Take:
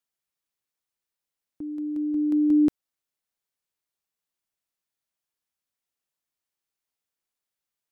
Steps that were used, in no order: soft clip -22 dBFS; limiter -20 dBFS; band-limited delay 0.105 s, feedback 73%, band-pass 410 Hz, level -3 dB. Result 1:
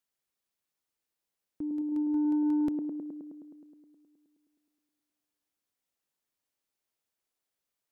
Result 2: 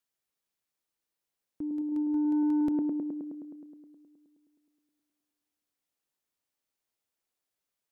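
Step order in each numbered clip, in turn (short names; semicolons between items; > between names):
limiter > band-limited delay > soft clip; band-limited delay > limiter > soft clip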